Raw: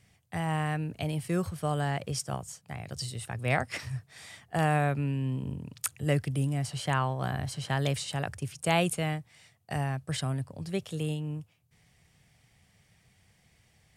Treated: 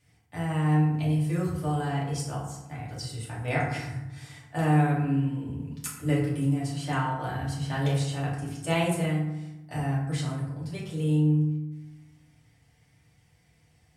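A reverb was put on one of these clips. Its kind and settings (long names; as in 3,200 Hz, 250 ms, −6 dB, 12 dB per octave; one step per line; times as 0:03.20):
feedback delay network reverb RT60 0.95 s, low-frequency decay 1.4×, high-frequency decay 0.5×, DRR −6.5 dB
level −7.5 dB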